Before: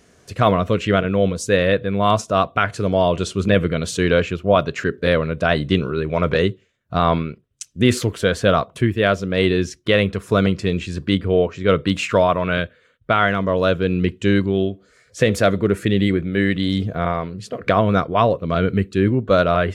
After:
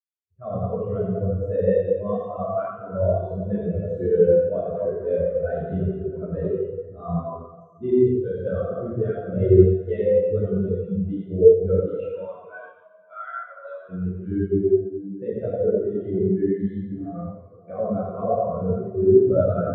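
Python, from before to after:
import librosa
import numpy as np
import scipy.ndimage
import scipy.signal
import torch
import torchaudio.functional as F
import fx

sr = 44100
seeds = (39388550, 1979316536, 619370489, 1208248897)

y = fx.highpass(x, sr, hz=850.0, slope=12, at=(11.88, 13.89))
y = fx.echo_feedback(y, sr, ms=87, feedback_pct=40, wet_db=-5.5)
y = fx.rev_plate(y, sr, seeds[0], rt60_s=3.4, hf_ratio=0.6, predelay_ms=0, drr_db=-7.5)
y = fx.spectral_expand(y, sr, expansion=2.5)
y = y * librosa.db_to_amplitude(-7.0)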